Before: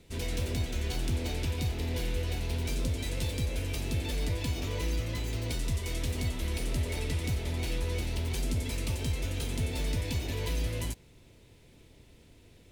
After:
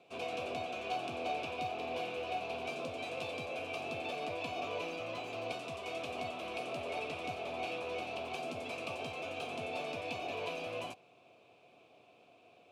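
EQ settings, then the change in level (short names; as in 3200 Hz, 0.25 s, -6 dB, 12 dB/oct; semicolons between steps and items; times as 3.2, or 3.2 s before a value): vowel filter a; HPF 100 Hz 24 dB/oct; +13.5 dB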